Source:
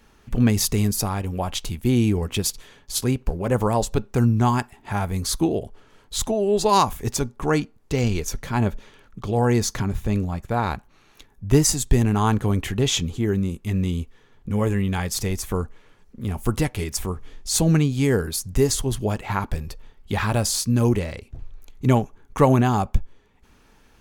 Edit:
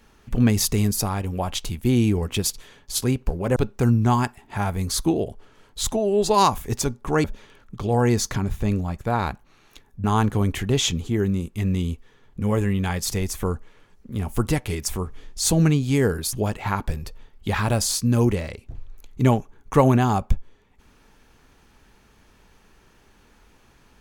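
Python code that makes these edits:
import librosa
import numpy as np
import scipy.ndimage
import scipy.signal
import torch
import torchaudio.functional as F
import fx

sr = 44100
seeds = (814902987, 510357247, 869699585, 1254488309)

y = fx.edit(x, sr, fx.cut(start_s=3.56, length_s=0.35),
    fx.cut(start_s=7.59, length_s=1.09),
    fx.cut(start_s=11.48, length_s=0.65),
    fx.cut(start_s=18.42, length_s=0.55), tone=tone)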